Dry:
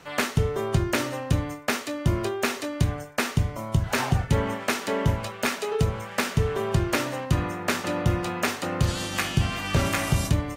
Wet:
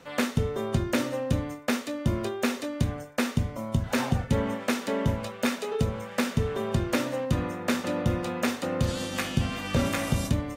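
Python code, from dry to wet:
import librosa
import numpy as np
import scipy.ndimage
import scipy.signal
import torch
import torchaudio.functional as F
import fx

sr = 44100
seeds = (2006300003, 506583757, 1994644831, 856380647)

y = fx.small_body(x, sr, hz=(240.0, 510.0, 3600.0), ring_ms=55, db=10)
y = y * librosa.db_to_amplitude(-4.5)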